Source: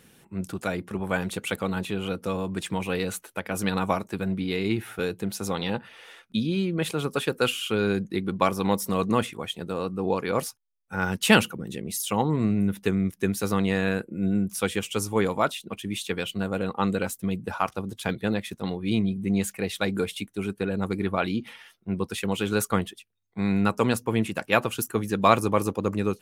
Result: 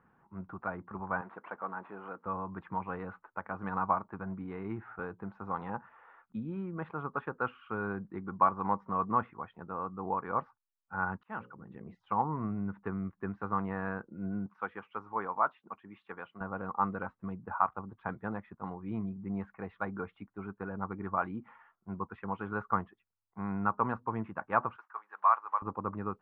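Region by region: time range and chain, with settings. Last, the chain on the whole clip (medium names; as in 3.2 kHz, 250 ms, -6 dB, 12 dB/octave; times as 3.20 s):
1.21–2.26 s: CVSD coder 32 kbps + high-pass 300 Hz + distance through air 120 m
11.17–11.95 s: hum notches 60/120/180/240/300/360/420/480/540 Hz + slow attack 566 ms
14.46–16.41 s: high-pass 460 Hz 6 dB/octave + upward compressor, threshold -36 dBFS
24.76–25.62 s: block-companded coder 5-bit + ladder high-pass 670 Hz, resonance 20% + treble shelf 4 kHz +6 dB
whole clip: low-pass 1.2 kHz 24 dB/octave; resonant low shelf 730 Hz -11 dB, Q 1.5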